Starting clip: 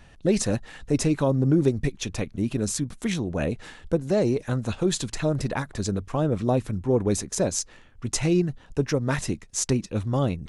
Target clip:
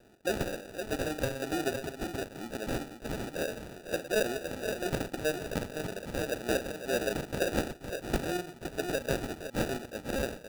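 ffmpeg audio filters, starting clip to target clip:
-af "highpass=550,aecho=1:1:43|44|112|481|514:0.335|0.141|0.178|0.158|0.422,acrusher=samples=41:mix=1:aa=0.000001,volume=-2.5dB"

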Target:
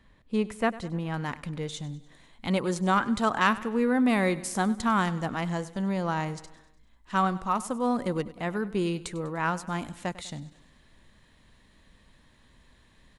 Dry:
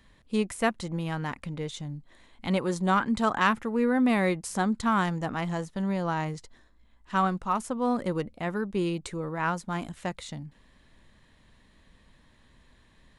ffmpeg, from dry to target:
-af "asetnsamples=n=441:p=0,asendcmd='1.14 highshelf g 3',highshelf=f=4k:g=-10,aecho=1:1:99|198|297|396|495:0.126|0.0692|0.0381|0.0209|0.0115"

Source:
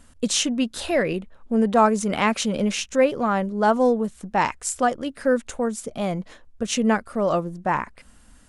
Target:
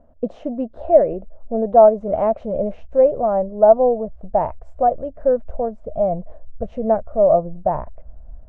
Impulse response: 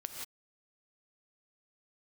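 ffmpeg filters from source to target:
-af "asubboost=boost=11:cutoff=78,lowpass=f=640:t=q:w=7.3,volume=-2.5dB"

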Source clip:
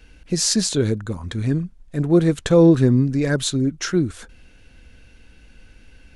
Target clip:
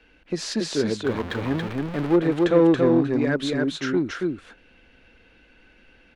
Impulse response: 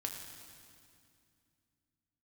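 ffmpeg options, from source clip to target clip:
-filter_complex "[0:a]asettb=1/sr,asplit=3[a][b][c];[a]atrim=end=1.044[d];[b]atrim=start=1.04:end=2.16,asetpts=PTS-STARTPTS,afade=t=in:d=0.004:c=qsin,afade=t=out:st=1.116:d=0.004:c=qsin,aeval=exprs='val(0)+0.5*0.0708*sgn(val(0))':c=same[e];[c]atrim=start=2.156[f];[d][e]acrossfade=d=0.004:c1=hsin:c2=qsin[g];[g][f]acrossfade=d=0.004:c1=qsin:c2=hsin,aecho=1:1:280:0.708,asplit=2[h][i];[i]asoftclip=type=hard:threshold=-14dB,volume=-3dB[j];[h][j]amix=inputs=2:normalize=0,acrossover=split=230 3800:gain=0.2 1 0.112[k][l][m];[k][l][m]amix=inputs=3:normalize=0,volume=-5.5dB"

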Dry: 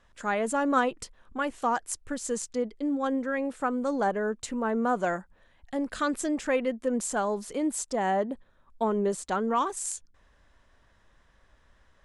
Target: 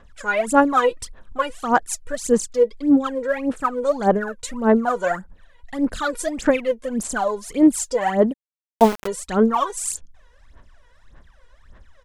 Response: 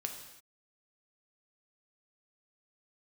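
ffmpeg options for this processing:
-filter_complex "[0:a]aphaser=in_gain=1:out_gain=1:delay=2.1:decay=0.8:speed=1.7:type=sinusoidal,aresample=32000,aresample=44100,asplit=3[a][b][c];[a]afade=t=out:st=8.32:d=0.02[d];[b]aeval=exprs='val(0)*gte(abs(val(0)),0.0708)':c=same,afade=t=in:st=8.32:d=0.02,afade=t=out:st=9.06:d=0.02[e];[c]afade=t=in:st=9.06:d=0.02[f];[d][e][f]amix=inputs=3:normalize=0,volume=2dB"

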